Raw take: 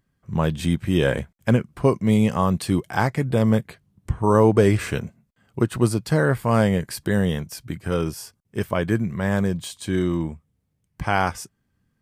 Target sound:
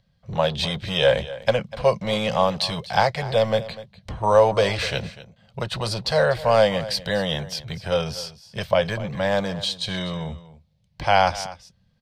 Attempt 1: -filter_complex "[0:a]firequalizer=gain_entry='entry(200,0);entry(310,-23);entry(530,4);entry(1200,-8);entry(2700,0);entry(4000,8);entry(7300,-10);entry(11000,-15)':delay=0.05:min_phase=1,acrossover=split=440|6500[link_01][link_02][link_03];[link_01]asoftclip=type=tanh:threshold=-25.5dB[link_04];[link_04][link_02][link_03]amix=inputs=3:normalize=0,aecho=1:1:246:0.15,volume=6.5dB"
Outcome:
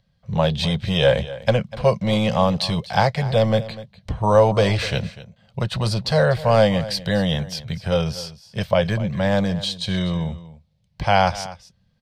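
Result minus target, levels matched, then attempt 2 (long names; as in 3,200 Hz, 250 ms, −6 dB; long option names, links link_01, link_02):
soft clipping: distortion −5 dB
-filter_complex "[0:a]firequalizer=gain_entry='entry(200,0);entry(310,-23);entry(530,4);entry(1200,-8);entry(2700,0);entry(4000,8);entry(7300,-10);entry(11000,-15)':delay=0.05:min_phase=1,acrossover=split=440|6500[link_01][link_02][link_03];[link_01]asoftclip=type=tanh:threshold=-35.5dB[link_04];[link_04][link_02][link_03]amix=inputs=3:normalize=0,aecho=1:1:246:0.15,volume=6.5dB"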